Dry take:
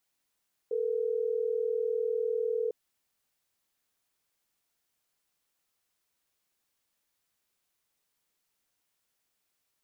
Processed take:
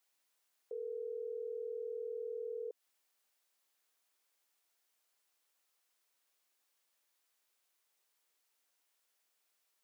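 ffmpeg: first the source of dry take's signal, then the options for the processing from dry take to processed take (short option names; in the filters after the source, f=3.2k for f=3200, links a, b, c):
-f lavfi -i "aevalsrc='0.0316*(sin(2*PI*440*t)+sin(2*PI*480*t))*clip(min(mod(t,6),2-mod(t,6))/0.005,0,1)':d=3.12:s=44100"
-af "highpass=400,alimiter=level_in=12dB:limit=-24dB:level=0:latency=1:release=134,volume=-12dB"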